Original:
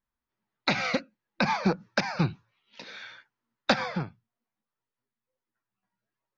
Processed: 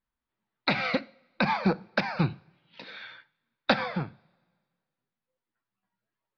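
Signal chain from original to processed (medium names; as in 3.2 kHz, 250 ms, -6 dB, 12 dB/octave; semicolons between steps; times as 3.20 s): steep low-pass 4.6 kHz 36 dB/octave; two-slope reverb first 0.46 s, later 1.8 s, from -19 dB, DRR 16.5 dB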